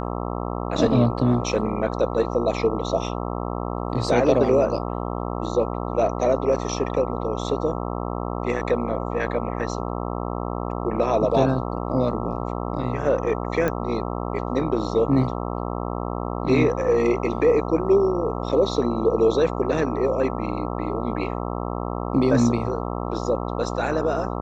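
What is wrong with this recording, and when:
buzz 60 Hz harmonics 22 -28 dBFS
13.68 pop -11 dBFS

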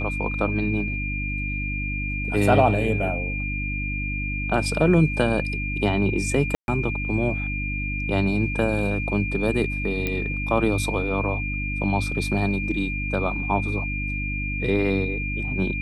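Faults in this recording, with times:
hum 50 Hz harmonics 6 -29 dBFS
tone 2400 Hz -29 dBFS
6.55–6.68 gap 0.131 s
10.07 pop -12 dBFS

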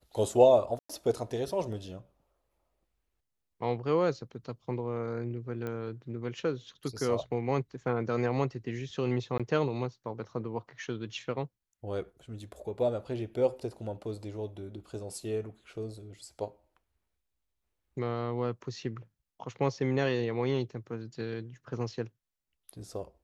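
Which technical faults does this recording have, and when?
0.79–0.9 gap 0.105 s
5.67 pop -24 dBFS
9.38–9.4 gap 16 ms

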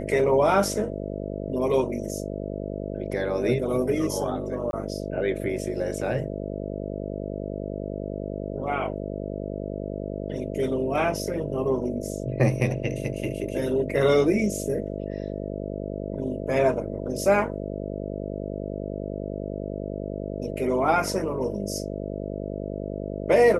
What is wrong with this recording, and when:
buzz 50 Hz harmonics 13 -32 dBFS
4.71–4.73 gap 21 ms

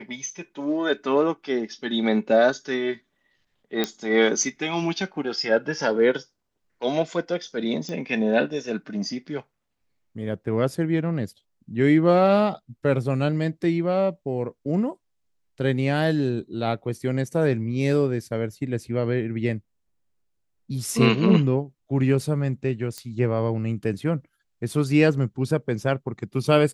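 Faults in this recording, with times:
3.84 pop -9 dBFS
7.89 pop -20 dBFS
22.98 pop -19 dBFS

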